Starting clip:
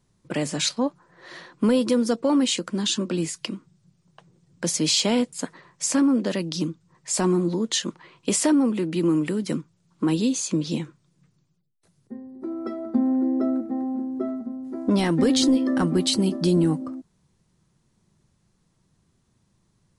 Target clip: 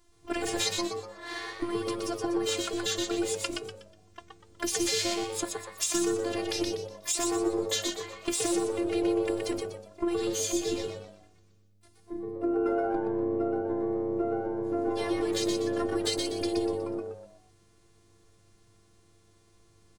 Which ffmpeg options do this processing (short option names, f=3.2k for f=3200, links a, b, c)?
-filter_complex "[0:a]bandreject=f=60:t=h:w=6,bandreject=f=120:t=h:w=6,bandreject=f=180:t=h:w=6,bandreject=f=240:t=h:w=6,bandreject=f=300:t=h:w=6,bandreject=f=360:t=h:w=6,bandreject=f=420:t=h:w=6,bandreject=f=480:t=h:w=6,bandreject=f=540:t=h:w=6,bandreject=f=600:t=h:w=6,acompressor=threshold=-32dB:ratio=8,asplit=3[a][b][c];[b]asetrate=22050,aresample=44100,atempo=2,volume=-9dB[d];[c]asetrate=88200,aresample=44100,atempo=0.5,volume=-16dB[e];[a][d][e]amix=inputs=3:normalize=0,afftfilt=real='hypot(re,im)*cos(PI*b)':imag='0':win_size=512:overlap=0.75,asplit=2[f][g];[g]asplit=4[h][i][j][k];[h]adelay=122,afreqshift=100,volume=-4dB[l];[i]adelay=244,afreqshift=200,volume=-13.6dB[m];[j]adelay=366,afreqshift=300,volume=-23.3dB[n];[k]adelay=488,afreqshift=400,volume=-32.9dB[o];[l][m][n][o]amix=inputs=4:normalize=0[p];[f][p]amix=inputs=2:normalize=0,volume=7.5dB"